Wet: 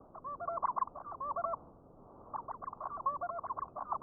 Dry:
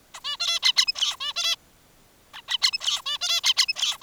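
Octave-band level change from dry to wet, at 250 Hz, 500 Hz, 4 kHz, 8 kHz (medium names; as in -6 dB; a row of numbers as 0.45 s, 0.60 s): no reading, +6.0 dB, under -40 dB, under -40 dB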